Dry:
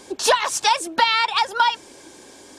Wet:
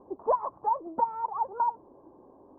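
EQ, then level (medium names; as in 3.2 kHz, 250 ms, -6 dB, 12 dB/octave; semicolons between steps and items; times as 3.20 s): Chebyshev low-pass 1.1 kHz, order 5; -6.5 dB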